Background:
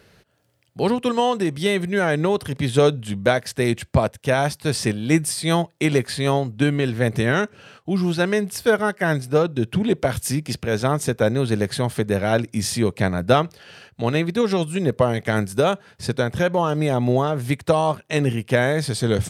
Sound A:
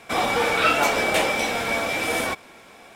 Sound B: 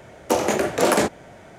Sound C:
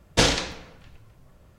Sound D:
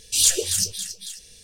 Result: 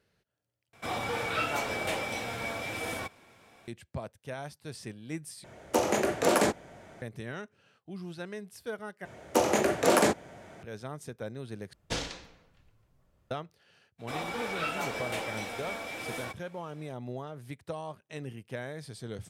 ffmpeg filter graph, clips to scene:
ffmpeg -i bed.wav -i cue0.wav -i cue1.wav -i cue2.wav -filter_complex "[1:a]asplit=2[link_01][link_02];[2:a]asplit=2[link_03][link_04];[0:a]volume=-20dB[link_05];[link_01]equalizer=frequency=110:width_type=o:width=0.77:gain=12[link_06];[link_04]highpass=51[link_07];[link_05]asplit=5[link_08][link_09][link_10][link_11][link_12];[link_08]atrim=end=0.734[link_13];[link_06]atrim=end=2.95,asetpts=PTS-STARTPTS,volume=-11.5dB[link_14];[link_09]atrim=start=3.676:end=5.444[link_15];[link_03]atrim=end=1.58,asetpts=PTS-STARTPTS,volume=-6dB[link_16];[link_10]atrim=start=7.016:end=9.054[link_17];[link_07]atrim=end=1.58,asetpts=PTS-STARTPTS,volume=-4.5dB[link_18];[link_11]atrim=start=10.626:end=11.734[link_19];[3:a]atrim=end=1.58,asetpts=PTS-STARTPTS,volume=-14.5dB[link_20];[link_12]atrim=start=13.306[link_21];[link_02]atrim=end=2.95,asetpts=PTS-STARTPTS,volume=-14dB,afade=type=in:duration=0.02,afade=type=out:start_time=2.93:duration=0.02,adelay=13980[link_22];[link_13][link_14]acrossfade=duration=0.004:curve1=hsin:curve2=hsin[link_23];[link_23][link_15]acrossfade=duration=0.004:curve1=hsin:curve2=hsin[link_24];[link_24][link_16]acrossfade=duration=0.004:curve1=hsin:curve2=hsin[link_25];[link_25][link_17]acrossfade=duration=0.004:curve1=hsin:curve2=hsin[link_26];[link_26][link_18]acrossfade=duration=0.004:curve1=hsin:curve2=hsin[link_27];[link_27][link_19]acrossfade=duration=0.004:curve1=hsin:curve2=hsin[link_28];[link_28][link_20]acrossfade=duration=0.004:curve1=hsin:curve2=hsin[link_29];[link_29][link_21]acrossfade=duration=0.004:curve1=hsin:curve2=hsin[link_30];[link_30][link_22]amix=inputs=2:normalize=0" out.wav

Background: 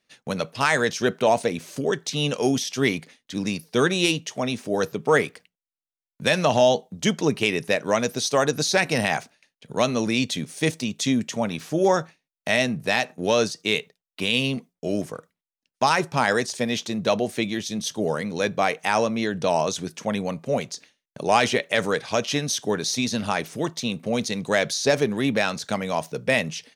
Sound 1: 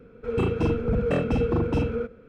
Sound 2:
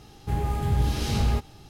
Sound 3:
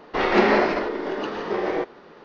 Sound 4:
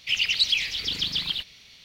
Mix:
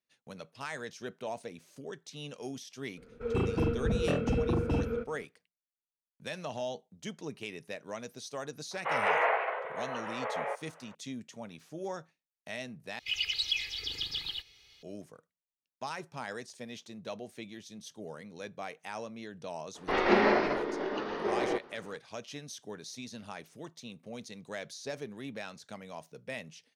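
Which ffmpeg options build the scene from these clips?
ffmpeg -i bed.wav -i cue0.wav -i cue1.wav -i cue2.wav -i cue3.wav -filter_complex "[3:a]asplit=2[link_01][link_02];[0:a]volume=-19dB[link_03];[1:a]aresample=32000,aresample=44100[link_04];[link_01]highpass=frequency=490:width_type=q:width=0.5412,highpass=frequency=490:width_type=q:width=1.307,lowpass=frequency=2800:width_type=q:width=0.5176,lowpass=frequency=2800:width_type=q:width=0.7071,lowpass=frequency=2800:width_type=q:width=1.932,afreqshift=73[link_05];[4:a]aecho=1:1:2.4:0.95[link_06];[link_03]asplit=2[link_07][link_08];[link_07]atrim=end=12.994[link_09];[link_06]atrim=end=1.84,asetpts=PTS-STARTPTS,volume=-11.5dB[link_10];[link_08]atrim=start=14.826[link_11];[link_04]atrim=end=2.28,asetpts=PTS-STARTPTS,volume=-5.5dB,afade=type=in:duration=0.004:curve=hsin,afade=type=out:start_time=2.276:duration=0.004:curve=hsin,adelay=2970[link_12];[link_05]atrim=end=2.24,asetpts=PTS-STARTPTS,volume=-6.5dB,afade=type=in:duration=0.004:curve=hsin,afade=type=out:start_time=2.236:duration=0.004:curve=hsin,adelay=8710[link_13];[link_02]atrim=end=2.24,asetpts=PTS-STARTPTS,volume=-6.5dB,afade=type=in:duration=0.02,afade=type=out:start_time=2.22:duration=0.02,adelay=19740[link_14];[link_09][link_10]acrossfade=duration=0.004:curve1=hsin:curve2=hsin[link_15];[link_15][link_11]acrossfade=duration=0.004:curve1=hsin:curve2=hsin[link_16];[link_16][link_12][link_13][link_14]amix=inputs=4:normalize=0" out.wav

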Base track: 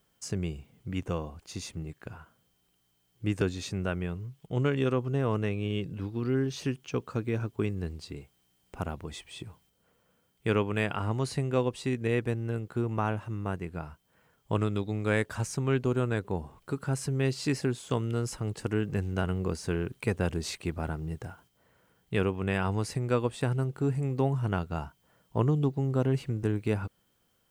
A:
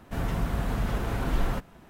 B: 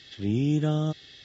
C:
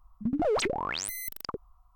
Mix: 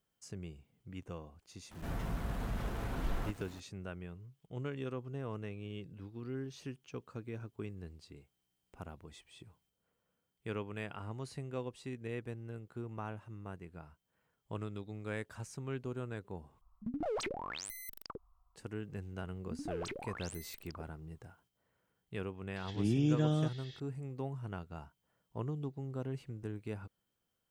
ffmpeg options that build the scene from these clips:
ffmpeg -i bed.wav -i cue0.wav -i cue1.wav -i cue2.wav -filter_complex "[3:a]asplit=2[link_01][link_02];[0:a]volume=-13dB[link_03];[1:a]aeval=exprs='val(0)+0.5*0.00794*sgn(val(0))':channel_layout=same[link_04];[link_03]asplit=2[link_05][link_06];[link_05]atrim=end=16.614[link_07];[link_01]atrim=end=1.95,asetpts=PTS-STARTPTS,volume=-10dB[link_08];[link_06]atrim=start=18.556[link_09];[link_04]atrim=end=1.89,asetpts=PTS-STARTPTS,volume=-10dB,afade=type=in:duration=0.004:curve=hsin,afade=type=out:start_time=1.886:duration=0.004:curve=hsin,adelay=1710[link_10];[link_02]atrim=end=1.95,asetpts=PTS-STARTPTS,volume=-14.5dB,afade=type=in:duration=0.004:curve=hsin,afade=type=out:start_time=1.946:duration=0.004:curve=hsin,adelay=19260[link_11];[2:a]atrim=end=1.24,asetpts=PTS-STARTPTS,volume=-5.5dB,afade=type=in:duration=0.004:curve=hsin,afade=type=out:start_time=1.236:duration=0.004:curve=hsin,adelay=22560[link_12];[link_07][link_08]acrossfade=duration=0.004:curve1=hsin:curve2=hsin[link_13];[link_13][link_09]acrossfade=duration=0.004:curve1=hsin:curve2=hsin[link_14];[link_14][link_10][link_11][link_12]amix=inputs=4:normalize=0" out.wav

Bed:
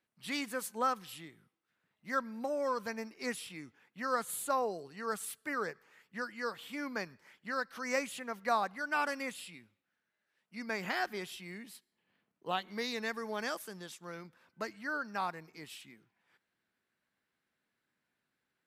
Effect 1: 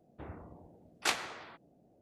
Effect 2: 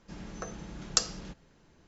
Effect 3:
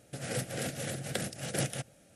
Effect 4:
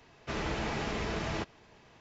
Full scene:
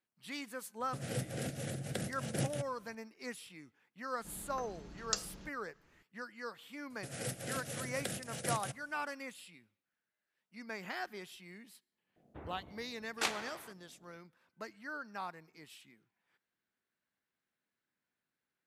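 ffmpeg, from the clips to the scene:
ffmpeg -i bed.wav -i cue0.wav -i cue1.wav -i cue2.wav -filter_complex "[3:a]asplit=2[link_01][link_02];[0:a]volume=-6.5dB[link_03];[link_01]lowshelf=frequency=460:gain=6.5[link_04];[link_02]highshelf=frequency=6800:gain=4.5[link_05];[link_04]atrim=end=2.15,asetpts=PTS-STARTPTS,volume=-7dB,afade=type=in:duration=0.004:curve=hsin,afade=type=out:start_time=2.146:duration=0.004:curve=hsin,adelay=800[link_06];[2:a]atrim=end=1.87,asetpts=PTS-STARTPTS,volume=-8.5dB,afade=type=in:duration=0.004:curve=hsin,afade=type=out:start_time=1.866:duration=0.004:curve=hsin,adelay=4160[link_07];[link_05]atrim=end=2.15,asetpts=PTS-STARTPTS,volume=-6dB,afade=type=in:duration=0.004:curve=hsin,afade=type=out:start_time=2.146:duration=0.004:curve=hsin,adelay=304290S[link_08];[1:a]atrim=end=2.01,asetpts=PTS-STARTPTS,volume=-3dB,afade=type=in:duration=0.004:curve=hsin,afade=type=out:start_time=2.006:duration=0.004:curve=hsin,adelay=12160[link_09];[link_03][link_06][link_07][link_08][link_09]amix=inputs=5:normalize=0" out.wav

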